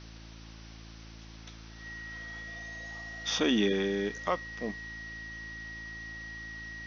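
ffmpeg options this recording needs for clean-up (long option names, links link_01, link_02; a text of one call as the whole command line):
ffmpeg -i in.wav -af "bandreject=frequency=55.3:width_type=h:width=4,bandreject=frequency=110.6:width_type=h:width=4,bandreject=frequency=165.9:width_type=h:width=4,bandreject=frequency=221.2:width_type=h:width=4,bandreject=frequency=276.5:width_type=h:width=4,bandreject=frequency=331.8:width_type=h:width=4,bandreject=frequency=1900:width=30,afftdn=noise_reduction=29:noise_floor=-48" out.wav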